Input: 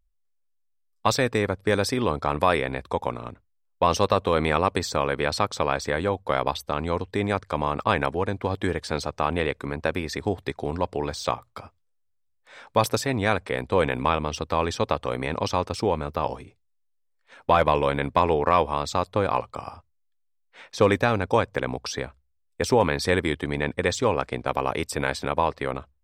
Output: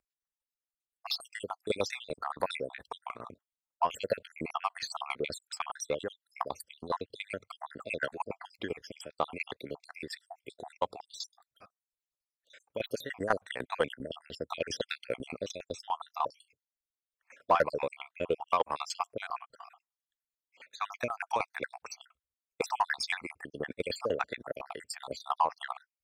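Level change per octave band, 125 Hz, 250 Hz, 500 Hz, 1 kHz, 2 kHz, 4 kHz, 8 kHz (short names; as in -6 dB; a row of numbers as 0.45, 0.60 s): -22.0, -16.5, -12.0, -9.5, -9.5, -8.0, -9.5 dB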